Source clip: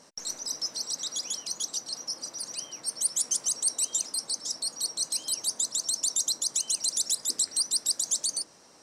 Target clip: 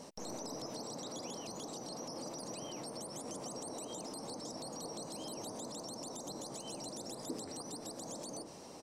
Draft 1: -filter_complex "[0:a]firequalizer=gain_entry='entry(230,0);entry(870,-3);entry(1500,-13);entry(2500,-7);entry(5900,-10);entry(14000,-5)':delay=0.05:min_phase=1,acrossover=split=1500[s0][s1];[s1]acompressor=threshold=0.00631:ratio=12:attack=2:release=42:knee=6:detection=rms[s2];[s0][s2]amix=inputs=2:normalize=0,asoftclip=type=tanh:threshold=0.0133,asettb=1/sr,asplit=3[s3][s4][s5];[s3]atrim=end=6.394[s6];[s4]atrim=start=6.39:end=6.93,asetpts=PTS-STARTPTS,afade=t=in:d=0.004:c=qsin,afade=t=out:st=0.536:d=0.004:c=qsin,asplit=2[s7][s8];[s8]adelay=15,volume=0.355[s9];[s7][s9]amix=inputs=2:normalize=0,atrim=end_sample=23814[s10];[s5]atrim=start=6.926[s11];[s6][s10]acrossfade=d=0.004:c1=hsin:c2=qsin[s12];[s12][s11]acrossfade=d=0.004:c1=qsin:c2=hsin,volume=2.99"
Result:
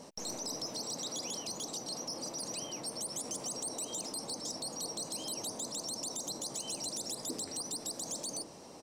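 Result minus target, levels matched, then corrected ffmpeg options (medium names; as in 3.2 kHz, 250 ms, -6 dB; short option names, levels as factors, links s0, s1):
compression: peak gain reduction -10.5 dB
-filter_complex "[0:a]firequalizer=gain_entry='entry(230,0);entry(870,-3);entry(1500,-13);entry(2500,-7);entry(5900,-10);entry(14000,-5)':delay=0.05:min_phase=1,acrossover=split=1500[s0][s1];[s1]acompressor=threshold=0.00168:ratio=12:attack=2:release=42:knee=6:detection=rms[s2];[s0][s2]amix=inputs=2:normalize=0,asoftclip=type=tanh:threshold=0.0133,asettb=1/sr,asplit=3[s3][s4][s5];[s3]atrim=end=6.394[s6];[s4]atrim=start=6.39:end=6.93,asetpts=PTS-STARTPTS,afade=t=in:d=0.004:c=qsin,afade=t=out:st=0.536:d=0.004:c=qsin,asplit=2[s7][s8];[s8]adelay=15,volume=0.355[s9];[s7][s9]amix=inputs=2:normalize=0,atrim=end_sample=23814[s10];[s5]atrim=start=6.926[s11];[s6][s10]acrossfade=d=0.004:c1=hsin:c2=qsin[s12];[s12][s11]acrossfade=d=0.004:c1=qsin:c2=hsin,volume=2.99"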